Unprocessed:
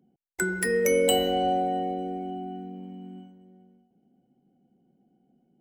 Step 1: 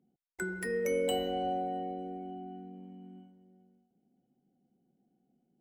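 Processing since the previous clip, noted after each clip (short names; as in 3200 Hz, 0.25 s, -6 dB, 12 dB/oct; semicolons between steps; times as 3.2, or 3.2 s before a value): high shelf 3600 Hz -7.5 dB; gain -8 dB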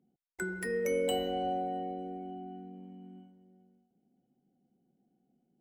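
nothing audible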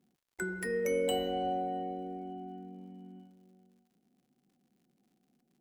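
crackle 120/s -63 dBFS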